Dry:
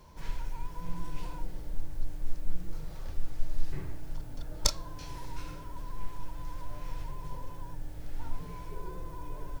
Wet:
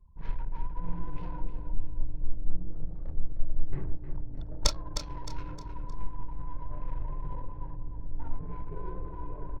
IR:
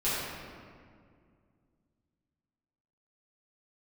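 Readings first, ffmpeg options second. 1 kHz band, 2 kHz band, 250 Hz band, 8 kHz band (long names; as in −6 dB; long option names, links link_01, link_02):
+1.0 dB, −1.5 dB, +2.5 dB, −1.5 dB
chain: -filter_complex "[0:a]highshelf=frequency=8200:gain=-11,anlmdn=0.0631,asplit=2[link_01][link_02];[link_02]aecho=0:1:309|618|927|1236:0.355|0.131|0.0486|0.018[link_03];[link_01][link_03]amix=inputs=2:normalize=0,volume=2.5dB"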